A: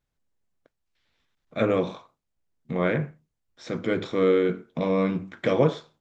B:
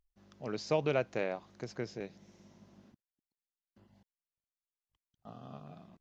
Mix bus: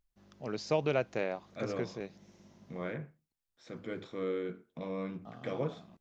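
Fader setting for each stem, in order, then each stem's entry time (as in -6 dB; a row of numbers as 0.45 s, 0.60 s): -14.5 dB, +0.5 dB; 0.00 s, 0.00 s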